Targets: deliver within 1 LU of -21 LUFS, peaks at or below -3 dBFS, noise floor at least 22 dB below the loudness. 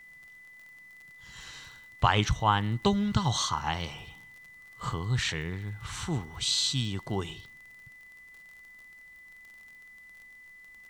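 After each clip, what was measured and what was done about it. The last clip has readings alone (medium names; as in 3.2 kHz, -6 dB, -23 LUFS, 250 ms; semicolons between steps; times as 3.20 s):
tick rate 44 per s; steady tone 2 kHz; tone level -49 dBFS; loudness -29.0 LUFS; peak level -9.5 dBFS; loudness target -21.0 LUFS
-> de-click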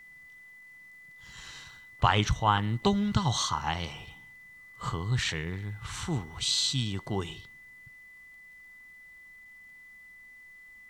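tick rate 0.92 per s; steady tone 2 kHz; tone level -49 dBFS
-> band-stop 2 kHz, Q 30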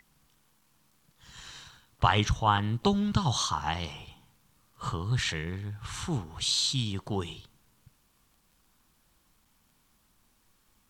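steady tone not found; loudness -29.5 LUFS; peak level -9.5 dBFS; loudness target -21.0 LUFS
-> trim +8.5 dB; peak limiter -3 dBFS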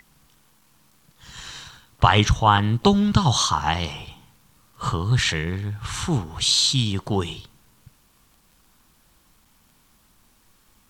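loudness -21.0 LUFS; peak level -3.0 dBFS; noise floor -60 dBFS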